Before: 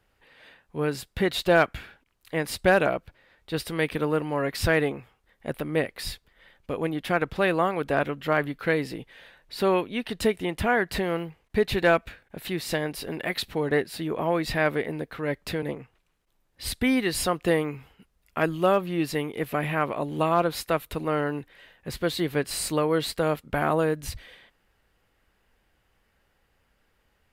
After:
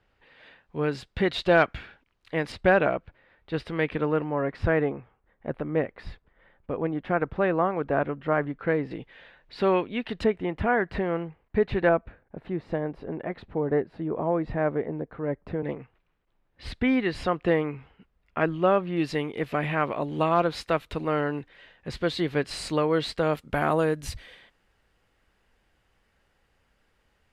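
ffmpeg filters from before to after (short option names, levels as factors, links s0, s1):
-af "asetnsamples=n=441:p=0,asendcmd='2.52 lowpass f 2600;4.24 lowpass f 1500;8.91 lowpass f 3200;10.24 lowpass f 1800;11.89 lowpass f 1000;15.64 lowpass f 2600;18.97 lowpass f 5200;23.33 lowpass f 9700',lowpass=4300"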